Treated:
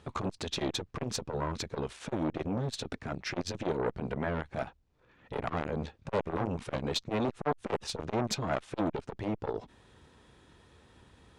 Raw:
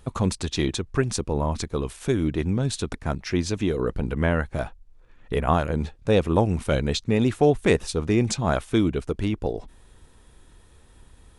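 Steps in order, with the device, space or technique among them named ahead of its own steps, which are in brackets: valve radio (BPF 97–5300 Hz; tube stage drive 19 dB, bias 0.45; core saturation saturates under 820 Hz); gain +1 dB

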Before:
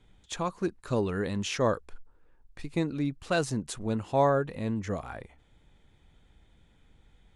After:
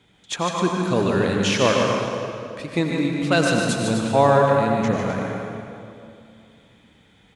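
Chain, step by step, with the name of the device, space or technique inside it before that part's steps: stadium PA (HPF 120 Hz 12 dB/oct; bell 2900 Hz +4 dB 1.8 oct; loudspeakers at several distances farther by 51 m -6 dB, 88 m -10 dB; reverb RT60 2.5 s, pre-delay 81 ms, DRR 1.5 dB); gain +6.5 dB

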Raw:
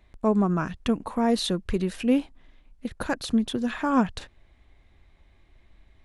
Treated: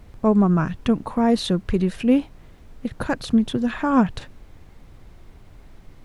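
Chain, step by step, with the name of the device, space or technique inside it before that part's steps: car interior (bell 130 Hz +8.5 dB; high shelf 3900 Hz -6 dB; brown noise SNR 21 dB); gain +3.5 dB

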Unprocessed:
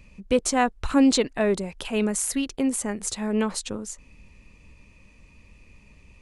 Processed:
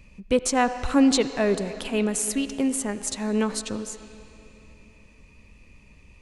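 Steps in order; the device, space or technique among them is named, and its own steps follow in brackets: filtered reverb send (on a send: HPF 360 Hz 6 dB/oct + LPF 4700 Hz 12 dB/oct + reverb RT60 3.3 s, pre-delay 69 ms, DRR 11 dB)

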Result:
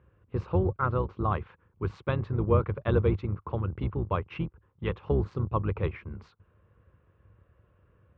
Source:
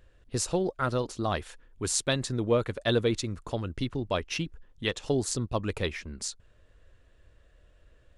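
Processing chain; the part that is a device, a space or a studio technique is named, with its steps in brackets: sub-octave bass pedal (octaver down 2 oct, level +3 dB; speaker cabinet 67–2100 Hz, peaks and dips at 100 Hz +5 dB, 260 Hz -9 dB, 650 Hz -8 dB, 1100 Hz +6 dB, 1800 Hz -9 dB); gain +1 dB

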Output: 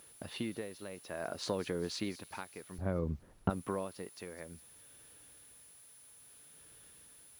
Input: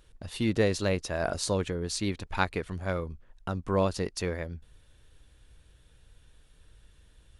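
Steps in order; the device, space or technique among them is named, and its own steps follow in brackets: medium wave at night (BPF 170–3700 Hz; compressor, threshold -32 dBFS, peak gain reduction 12 dB; tremolo 0.59 Hz, depth 73%; whine 10000 Hz -58 dBFS; white noise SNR 22 dB); 2.78–3.5 tilt -4.5 dB/oct; thin delay 0.205 s, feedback 52%, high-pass 4900 Hz, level -11.5 dB; gain +1.5 dB

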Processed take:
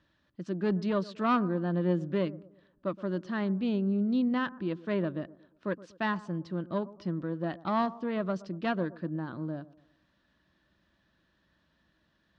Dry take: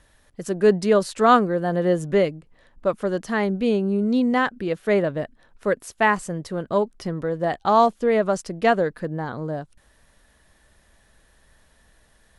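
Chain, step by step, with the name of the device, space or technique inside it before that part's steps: analogue delay pedal into a guitar amplifier (analogue delay 0.119 s, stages 1024, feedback 41%, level -18.5 dB; tube stage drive 8 dB, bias 0.45; speaker cabinet 86–4600 Hz, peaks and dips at 180 Hz +6 dB, 320 Hz +8 dB, 450 Hz -9 dB, 770 Hz -8 dB, 2100 Hz -6 dB); gain -7.5 dB

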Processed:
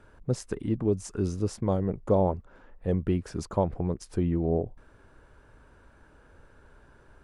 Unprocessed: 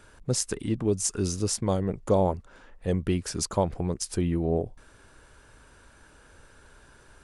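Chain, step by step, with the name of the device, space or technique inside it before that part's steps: through cloth (high shelf 2700 Hz -17 dB)

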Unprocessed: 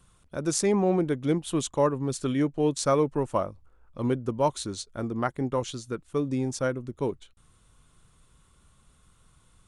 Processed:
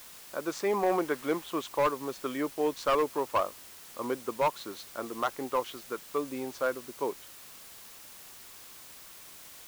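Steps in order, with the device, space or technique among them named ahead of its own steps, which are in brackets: drive-through speaker (BPF 440–2900 Hz; bell 1100 Hz +5.5 dB 0.42 oct; hard clip -20.5 dBFS, distortion -12 dB; white noise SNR 16 dB); 0.83–1.44 bell 1300 Hz +5 dB 1.9 oct

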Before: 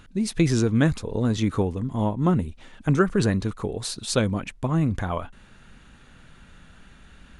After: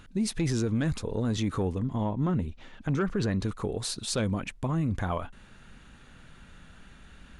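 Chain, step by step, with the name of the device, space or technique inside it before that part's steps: 1.78–3.41 bell 9300 Hz -11.5 dB 0.66 oct; soft clipper into limiter (soft clip -11 dBFS, distortion -22 dB; limiter -19 dBFS, peak gain reduction 7 dB); gain -1.5 dB

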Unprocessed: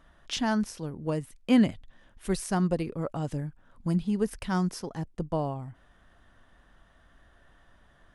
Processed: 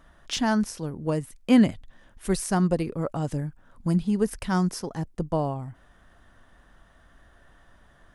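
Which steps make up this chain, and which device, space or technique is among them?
exciter from parts (in parallel at -9 dB: HPF 2200 Hz + soft clip -28.5 dBFS, distortion -16 dB + HPF 3100 Hz 12 dB/oct); on the sum: gain +3.5 dB

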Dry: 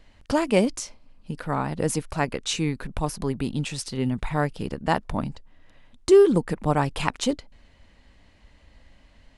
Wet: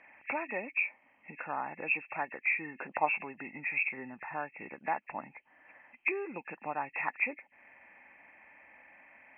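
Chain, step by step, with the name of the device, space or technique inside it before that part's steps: hearing aid with frequency lowering (nonlinear frequency compression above 1700 Hz 4:1; compressor 2.5:1, threshold -39 dBFS, peak gain reduction 18 dB; speaker cabinet 390–6300 Hz, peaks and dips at 440 Hz -6 dB, 830 Hz +8 dB, 1500 Hz +3 dB, 2500 Hz +10 dB); 2.74–3.19 bell 320 Hz -> 1000 Hz +10.5 dB 2.1 oct

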